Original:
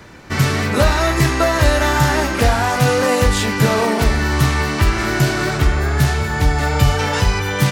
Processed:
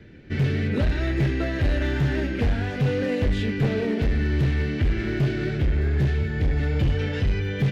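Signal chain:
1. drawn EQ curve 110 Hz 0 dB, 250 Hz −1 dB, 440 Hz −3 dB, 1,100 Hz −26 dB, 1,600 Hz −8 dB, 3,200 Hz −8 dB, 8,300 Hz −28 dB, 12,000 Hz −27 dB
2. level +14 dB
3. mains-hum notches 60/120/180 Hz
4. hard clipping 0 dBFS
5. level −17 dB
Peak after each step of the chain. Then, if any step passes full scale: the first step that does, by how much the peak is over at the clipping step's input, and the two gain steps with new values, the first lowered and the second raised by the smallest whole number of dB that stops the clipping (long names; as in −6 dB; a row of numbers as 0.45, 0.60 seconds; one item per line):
−3.5, +10.5, +10.0, 0.0, −17.0 dBFS
step 2, 10.0 dB
step 2 +4 dB, step 5 −7 dB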